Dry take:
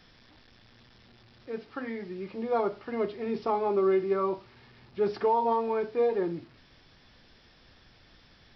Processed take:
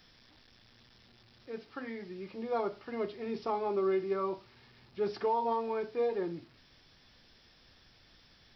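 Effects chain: treble shelf 4.6 kHz +10 dB; trim -5.5 dB

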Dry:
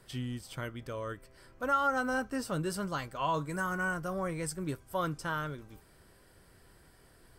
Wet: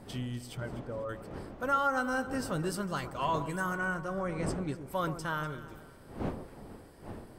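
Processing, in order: 0.57–1.09 s: spectral contrast enhancement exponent 1.8; wind noise 460 Hz -45 dBFS; 3.75–4.81 s: distance through air 61 m; on a send: echo whose repeats swap between lows and highs 123 ms, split 1.2 kHz, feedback 61%, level -10.5 dB; on the sum: endings held to a fixed fall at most 250 dB/s

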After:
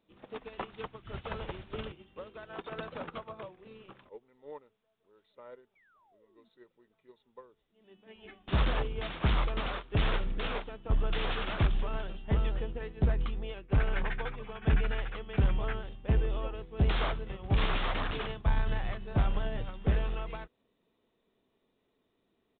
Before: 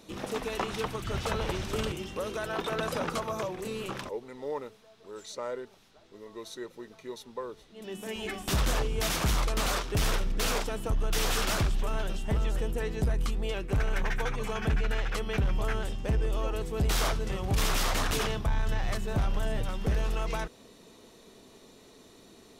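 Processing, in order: resampled via 8 kHz; painted sound fall, 5.75–6.49 s, 210–2400 Hz -46 dBFS; upward expansion 2.5:1, over -39 dBFS; trim +3 dB

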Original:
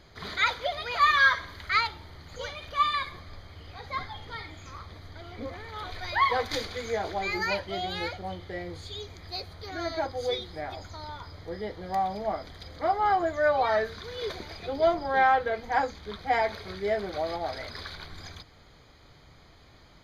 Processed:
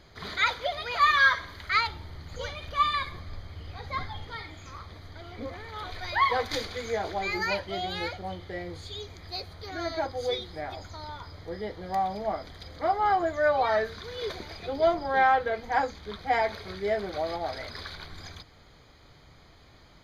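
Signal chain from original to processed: 1.87–4.25 s: bass shelf 200 Hz +6.5 dB

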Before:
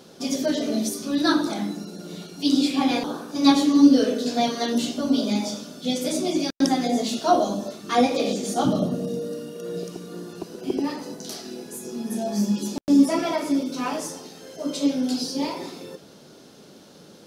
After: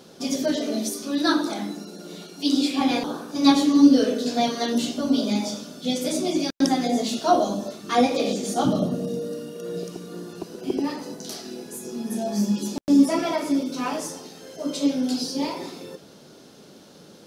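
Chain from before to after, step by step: 0.56–2.81 s: high-pass 220 Hz 12 dB/octave

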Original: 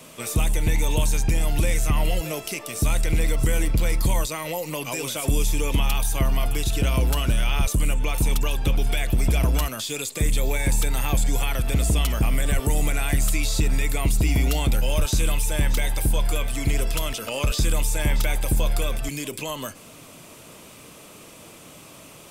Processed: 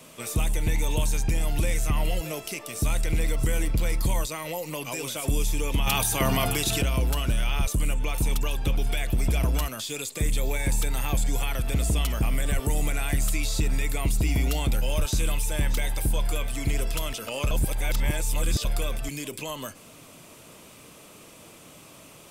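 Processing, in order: 5.86–6.81 s: spectral peaks clipped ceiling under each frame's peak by 18 dB; 17.51–18.65 s: reverse; trim -3.5 dB

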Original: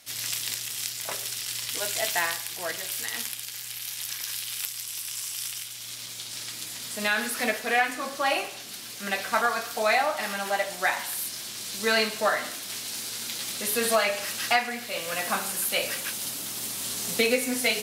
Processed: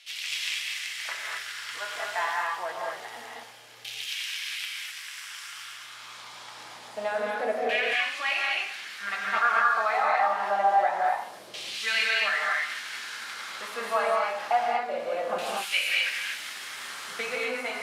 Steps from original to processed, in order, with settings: 8.81–9.38 s: comb filter that takes the minimum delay 9.4 ms; in parallel at +2.5 dB: compression, threshold -32 dBFS, peak gain reduction 14 dB; on the sum: LFO band-pass saw down 0.26 Hz 530–2900 Hz; gated-style reverb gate 270 ms rising, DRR -2.5 dB

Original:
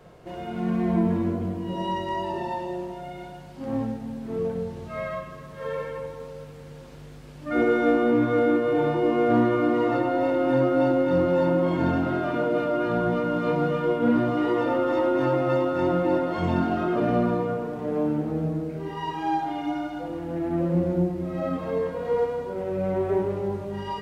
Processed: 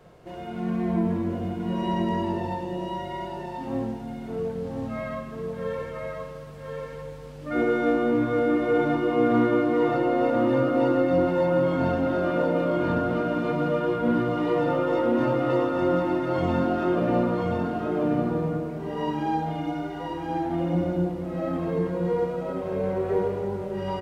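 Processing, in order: delay 1033 ms -3.5 dB; trim -2 dB

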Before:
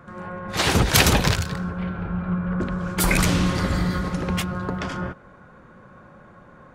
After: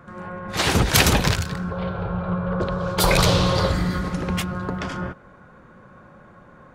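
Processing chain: 1.71–3.72 s: graphic EQ 125/250/500/1000/2000/4000/8000 Hz +7/-11/+11/+5/-5/+10/-3 dB

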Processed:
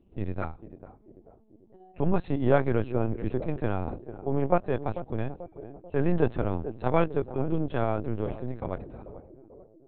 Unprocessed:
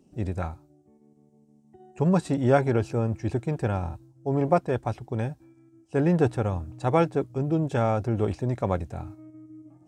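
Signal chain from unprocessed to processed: fade out at the end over 2.47 s; band-passed feedback delay 442 ms, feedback 57%, band-pass 370 Hz, level -11 dB; LPC vocoder at 8 kHz pitch kept; trim -1.5 dB

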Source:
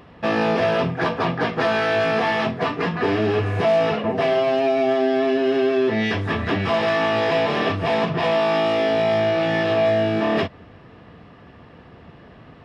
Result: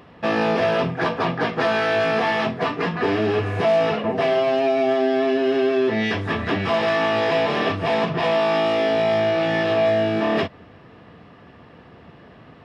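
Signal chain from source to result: bass shelf 66 Hz -9 dB

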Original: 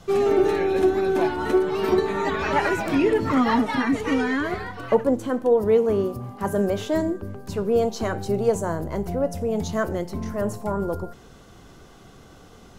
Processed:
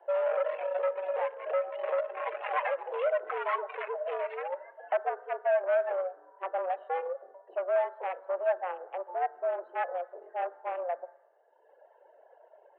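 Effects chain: local Wiener filter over 41 samples; reverb removal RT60 1.4 s; dynamic bell 1 kHz, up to -4 dB, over -38 dBFS, Q 0.94; in parallel at -2 dB: peak limiter -19.5 dBFS, peak gain reduction 11.5 dB; on the sum: saturation -19 dBFS, distortion -11 dB; distance through air 280 m; on a send at -16.5 dB: reverberation RT60 1.1 s, pre-delay 3 ms; on the sum: mistuned SSB +180 Hz 380–2800 Hz; trim -1.5 dB

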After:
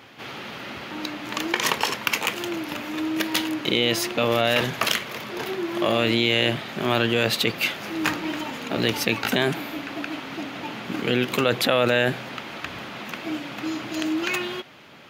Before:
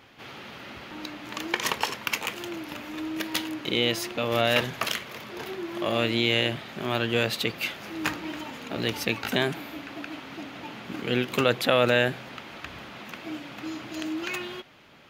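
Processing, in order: high-pass 95 Hz; in parallel at -1.5 dB: compressor with a negative ratio -27 dBFS, ratio -0.5

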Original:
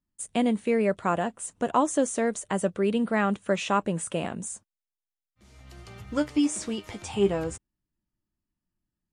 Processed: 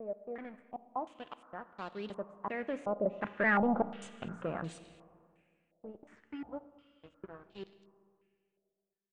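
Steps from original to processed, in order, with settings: slices played last to first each 196 ms, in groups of 5; Doppler pass-by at 3.86 s, 9 m/s, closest 1.7 m; de-hum 57.81 Hz, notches 5; waveshaping leveller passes 3; Schroeder reverb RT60 2.2 s, combs from 27 ms, DRR 13 dB; step-sequenced low-pass 2.8 Hz 630–4000 Hz; trim -8 dB

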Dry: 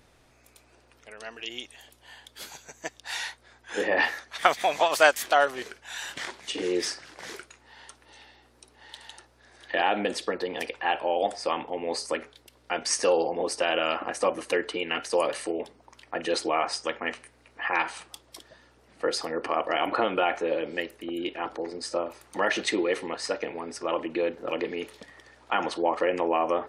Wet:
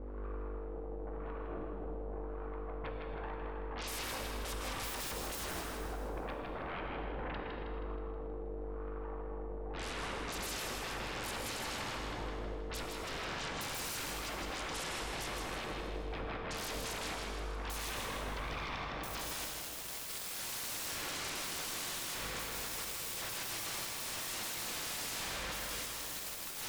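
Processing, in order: gate with hold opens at -50 dBFS; peaking EQ 1.7 kHz +6 dB 2.7 oct; band noise 1.2–6.9 kHz -37 dBFS; transient shaper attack -9 dB, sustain +4 dB; wah-wah 0.93 Hz 480–1200 Hz, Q 11; hum 50 Hz, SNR 25 dB; low-pass sweep 280 Hz -> 2.1 kHz, 17.24–20.34 s; sine folder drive 13 dB, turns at -49.5 dBFS; two-band feedback delay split 840 Hz, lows 293 ms, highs 159 ms, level -4.5 dB; on a send at -2.5 dB: reverberation, pre-delay 3 ms; on the sum: trim +9 dB

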